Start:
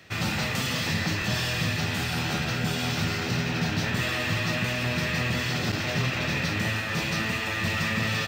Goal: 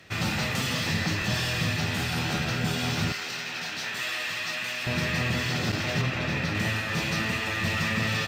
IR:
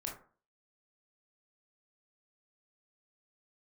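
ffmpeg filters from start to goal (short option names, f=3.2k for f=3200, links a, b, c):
-filter_complex "[0:a]asettb=1/sr,asplit=3[a][b][c];[a]atrim=end=3.124[d];[b]atrim=start=3.12:end=4.87,asetpts=PTS-STARTPTS,afade=t=in:d=0.004:c=qsin,afade=t=out:st=1.746:d=0.004:c=qsin,highpass=f=1.4k:p=1[e];[c]atrim=start=4.866[f];[d][e]acrossfade=d=0.004:c1=hsin:c2=qsin[g];[g][f]acrossfade=d=0.004:c1=qsin:c2=hsin,asettb=1/sr,asplit=3[h][i][j];[h]atrim=end=6.014[k];[i]atrim=start=6.01:end=6.55,asetpts=PTS-STARTPTS,afade=t=in:d=0.004:c=qsin,afade=t=out:st=0.536:d=0.004:c=qsin,highshelf=f=3.7k:g=-6.5[l];[j]atrim=start=6.546[m];[k][l]acrossfade=d=0.004:c1=hsin:c2=qsin[n];[n][m]acrossfade=d=0.004:c1=qsin:c2=hsin" -ar 32000 -c:a aac -b:a 96k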